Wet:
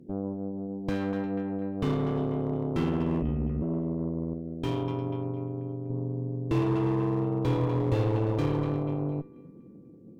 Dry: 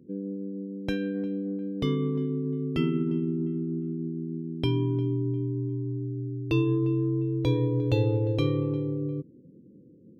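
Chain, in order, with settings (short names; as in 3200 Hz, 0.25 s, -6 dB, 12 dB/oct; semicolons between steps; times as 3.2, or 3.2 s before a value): in parallel at 0 dB: compressor 10:1, threshold -37 dBFS, peak gain reduction 18 dB; 4.33–5.9 on the sum: low shelf 200 Hz -7.5 dB; on a send: narrowing echo 0.244 s, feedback 55%, band-pass 1300 Hz, level -10 dB; 3.22–3.62 on the sum: frequency shift -97 Hz; added harmonics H 8 -18 dB, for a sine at -11 dBFS; dynamic EQ 1000 Hz, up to +5 dB, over -47 dBFS, Q 2.9; slew limiter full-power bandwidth 46 Hz; gain -3 dB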